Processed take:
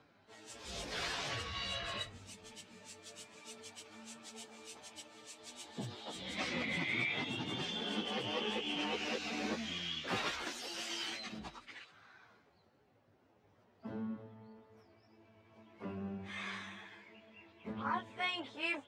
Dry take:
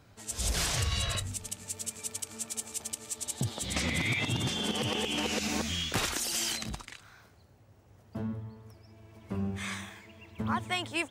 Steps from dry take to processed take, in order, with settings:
three-way crossover with the lows and the highs turned down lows −16 dB, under 180 Hz, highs −21 dB, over 4,800 Hz
time stretch by phase vocoder 1.7×
level −2 dB

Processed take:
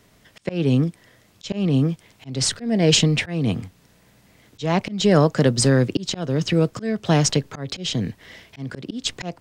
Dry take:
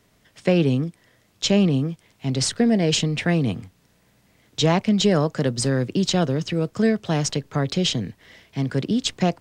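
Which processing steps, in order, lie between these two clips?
volume swells 299 ms
level +5 dB

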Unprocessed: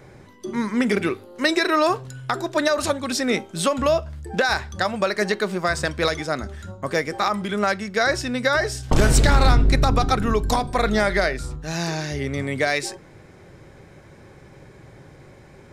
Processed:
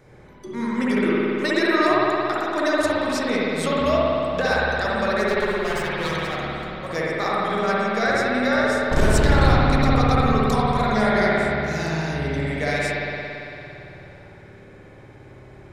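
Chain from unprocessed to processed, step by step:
0:05.28–0:06.87: lower of the sound and its delayed copy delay 5.4 ms
spring reverb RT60 3.1 s, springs 56 ms, chirp 40 ms, DRR −7 dB
level −6.5 dB

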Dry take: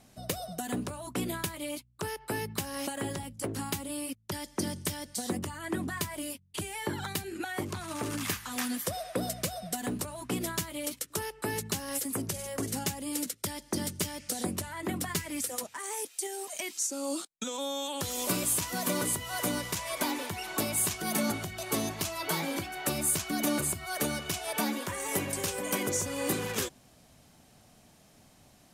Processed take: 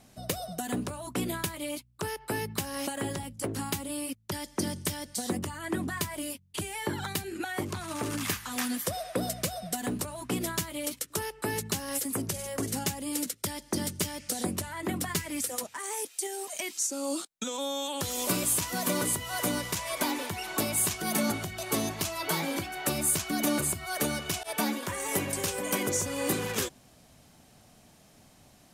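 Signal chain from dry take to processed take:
0:24.43–0:24.83: downward expander −31 dBFS
level +1.5 dB

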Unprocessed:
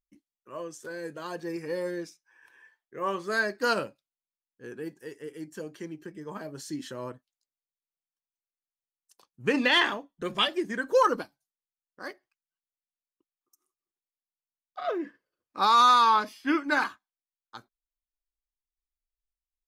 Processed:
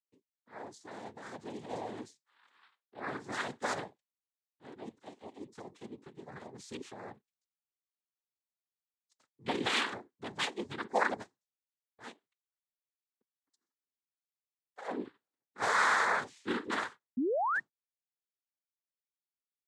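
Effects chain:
loose part that buzzes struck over −35 dBFS, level −22 dBFS
cochlear-implant simulation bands 6
sound drawn into the spectrogram rise, 0:17.17–0:17.60, 230–1,900 Hz −22 dBFS
level −8.5 dB

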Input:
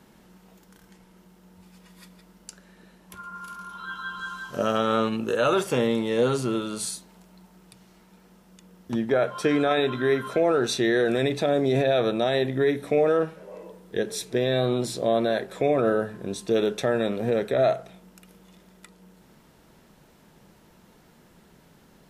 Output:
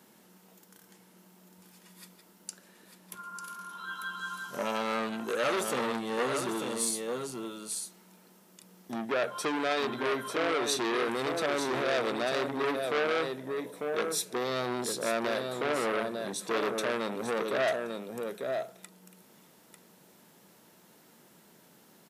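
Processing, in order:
high-pass filter 190 Hz 12 dB per octave
high-shelf EQ 6,800 Hz +10.5 dB
single-tap delay 896 ms −6.5 dB
saturating transformer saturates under 2,300 Hz
level −4 dB

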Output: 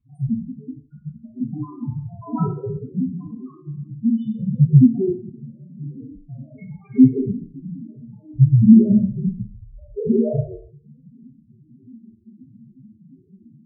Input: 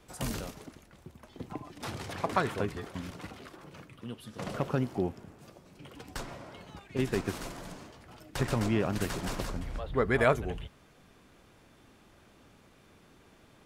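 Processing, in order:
spectral peaks only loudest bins 1
automatic gain control gain up to 6 dB
flat-topped bell 580 Hz −12.5 dB 1 octave
convolution reverb RT60 0.60 s, pre-delay 3 ms, DRR −9 dB
level −4.5 dB

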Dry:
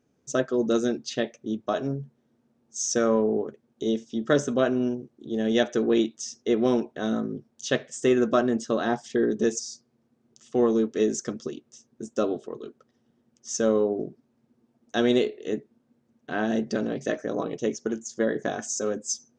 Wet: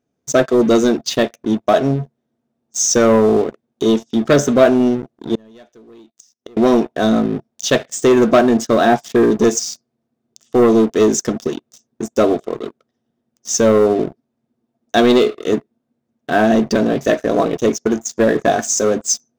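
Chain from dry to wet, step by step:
leveller curve on the samples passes 3
hollow resonant body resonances 680/3,600 Hz, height 8 dB
0:05.35–0:06.57: gate with flip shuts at −19 dBFS, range −31 dB
level +1.5 dB

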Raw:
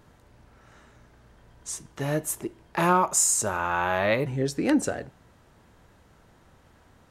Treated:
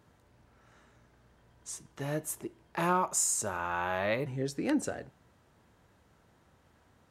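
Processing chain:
high-pass filter 55 Hz
level −7 dB

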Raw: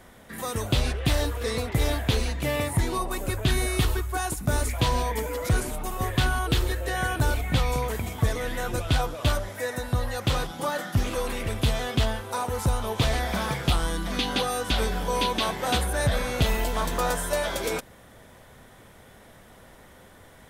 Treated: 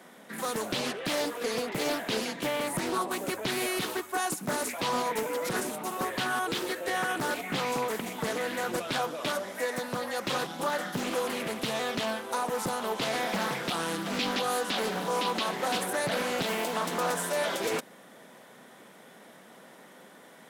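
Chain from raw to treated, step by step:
Butterworth high-pass 170 Hz 36 dB per octave
brickwall limiter −19.5 dBFS, peak gain reduction 7.5 dB
highs frequency-modulated by the lows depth 0.72 ms

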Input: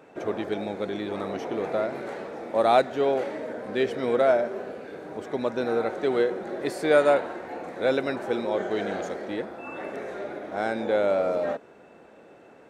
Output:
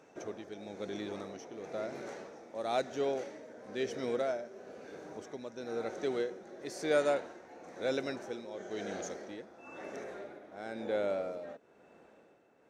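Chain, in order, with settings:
dynamic equaliser 1,000 Hz, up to −4 dB, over −37 dBFS, Q 1.2
amplitude tremolo 1 Hz, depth 61%
parametric band 6,000 Hz +14.5 dB 0.53 octaves, from 0:10.04 +4 dB
level −8 dB

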